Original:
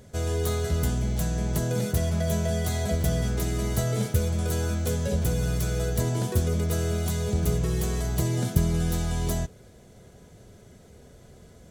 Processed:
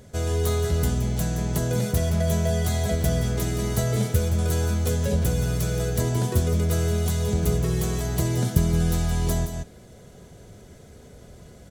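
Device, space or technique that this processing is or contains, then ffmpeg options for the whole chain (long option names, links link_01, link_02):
ducked delay: -filter_complex "[0:a]asplit=3[link_01][link_02][link_03];[link_02]adelay=171,volume=-2.5dB[link_04];[link_03]apad=whole_len=523791[link_05];[link_04][link_05]sidechaincompress=threshold=-32dB:ratio=8:attack=16:release=320[link_06];[link_01][link_06]amix=inputs=2:normalize=0,volume=2dB"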